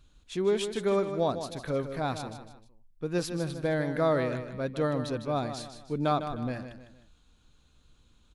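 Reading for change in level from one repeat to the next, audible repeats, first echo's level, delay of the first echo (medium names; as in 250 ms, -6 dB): -8.0 dB, 3, -9.5 dB, 154 ms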